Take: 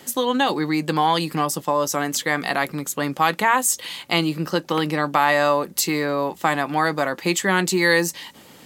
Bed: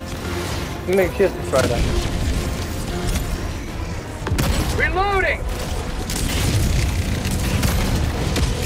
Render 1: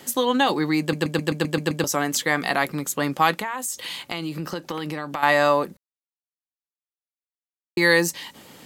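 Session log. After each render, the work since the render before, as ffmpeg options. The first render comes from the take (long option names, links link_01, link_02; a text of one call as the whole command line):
ffmpeg -i in.wav -filter_complex "[0:a]asettb=1/sr,asplit=3[link_01][link_02][link_03];[link_01]atrim=end=3.394[link_04];[link_02]atrim=start=3.39:end=5.23,asetpts=PTS-STARTPTS,afade=type=in:duration=0.004:curve=qsin,afade=type=out:start_time=1.836:duration=0.004:curve=qsin,acompressor=threshold=-26dB:ratio=4:attack=3.2:release=140:knee=1:detection=peak[link_05];[link_03]atrim=start=5.226[link_06];[link_04][link_05]acrossfade=duration=0.004:curve1=hsin:curve2=qsin[link_07];[link_07][link_06]acrossfade=duration=0.004:curve1=qsin:curve2=hsin,asplit=11[link_08][link_09][link_10][link_11][link_12][link_13][link_14][link_15][link_16][link_17][link_18];[link_08]atrim=end=0.932[link_19];[link_09]atrim=start=0.798:end=0.932[link_20];[link_10]atrim=start=0.798:end=0.932[link_21];[link_11]atrim=start=0.798:end=0.932[link_22];[link_12]atrim=start=0.798:end=0.932[link_23];[link_13]atrim=start=0.798:end=0.932[link_24];[link_14]atrim=start=0.798:end=0.932[link_25];[link_15]atrim=start=0.798:end=0.932[link_26];[link_16]atrim=start=1.838:end=5.77,asetpts=PTS-STARTPTS,afade=type=out:start_time=3.928:duration=0.004:curve=hsin[link_27];[link_17]atrim=start=5.77:end=7.77,asetpts=PTS-STARTPTS,volume=0[link_28];[link_18]atrim=start=7.77,asetpts=PTS-STARTPTS,afade=type=in:duration=0.004:curve=hsin[link_29];[link_19][link_20]acrossfade=duration=0.004:curve1=hsin:curve2=hsin[link_30];[link_30][link_21]acrossfade=duration=0.004:curve1=hsin:curve2=hsin[link_31];[link_31][link_22]acrossfade=duration=0.004:curve1=hsin:curve2=hsin[link_32];[link_32][link_23]acrossfade=duration=0.004:curve1=hsin:curve2=hsin[link_33];[link_33][link_24]acrossfade=duration=0.004:curve1=hsin:curve2=hsin[link_34];[link_34][link_25]acrossfade=duration=0.004:curve1=hsin:curve2=hsin[link_35];[link_35][link_26]acrossfade=duration=0.004:curve1=hsin:curve2=hsin[link_36];[link_27][link_28][link_29]concat=n=3:v=0:a=1[link_37];[link_36][link_37]acrossfade=duration=0.004:curve1=hsin:curve2=hsin" out.wav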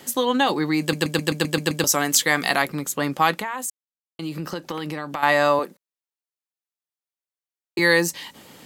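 ffmpeg -i in.wav -filter_complex "[0:a]asettb=1/sr,asplit=3[link_01][link_02][link_03];[link_01]atrim=end=0.814[link_04];[link_02]atrim=start=0.81:end=2.62,asetpts=PTS-STARTPTS,afade=type=in:duration=0.004:curve=qsin,afade=type=out:start_time=1.806:duration=0.004:curve=qsin,highshelf=frequency=2700:gain=8[link_05];[link_03]atrim=start=2.616[link_06];[link_04][link_05]acrossfade=duration=0.004:curve1=hsin:curve2=qsin[link_07];[link_07][link_06]acrossfade=duration=0.004:curve1=qsin:curve2=hsin,asettb=1/sr,asplit=3[link_08][link_09][link_10];[link_08]atrim=end=5.594[link_11];[link_09]atrim=start=5.59:end=7.79,asetpts=PTS-STARTPTS,afade=type=in:duration=0.004:curve=qsin,afade=type=out:start_time=2.196:duration=0.004:curve=qsin,highpass=280[link_12];[link_10]atrim=start=7.786[link_13];[link_11][link_12]acrossfade=duration=0.004:curve1=hsin:curve2=qsin[link_14];[link_14][link_13]acrossfade=duration=0.004:curve1=qsin:curve2=hsin,asplit=3[link_15][link_16][link_17];[link_15]atrim=end=3.7,asetpts=PTS-STARTPTS,afade=type=out:start_time=3.696:duration=0.004:curve=hsin[link_18];[link_16]atrim=start=3.7:end=4.19,asetpts=PTS-STARTPTS,volume=0[link_19];[link_17]atrim=start=4.19,asetpts=PTS-STARTPTS,afade=type=in:duration=0.004:curve=hsin[link_20];[link_18][link_19][link_20]concat=n=3:v=0:a=1" out.wav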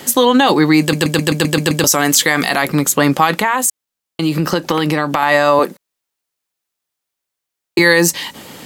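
ffmpeg -i in.wav -af "dynaudnorm=framelen=580:gausssize=7:maxgain=11.5dB,alimiter=level_in=11.5dB:limit=-1dB:release=50:level=0:latency=1" out.wav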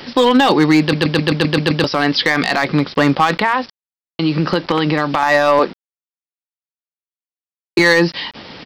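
ffmpeg -i in.wav -af "aresample=11025,acrusher=bits=5:mix=0:aa=0.000001,aresample=44100,volume=5dB,asoftclip=hard,volume=-5dB" out.wav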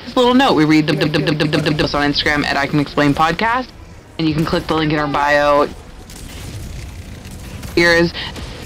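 ffmpeg -i in.wav -i bed.wav -filter_complex "[1:a]volume=-10.5dB[link_01];[0:a][link_01]amix=inputs=2:normalize=0" out.wav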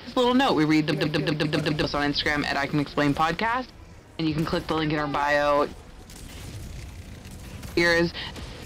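ffmpeg -i in.wav -af "volume=-9dB" out.wav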